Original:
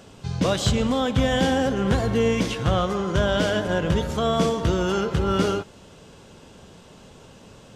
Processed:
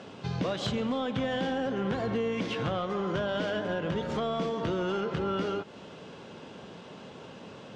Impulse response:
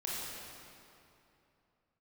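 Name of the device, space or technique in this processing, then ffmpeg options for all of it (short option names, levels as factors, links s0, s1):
AM radio: -af "highpass=160,lowpass=3800,acompressor=threshold=0.0316:ratio=5,asoftclip=type=tanh:threshold=0.0668,volume=1.41"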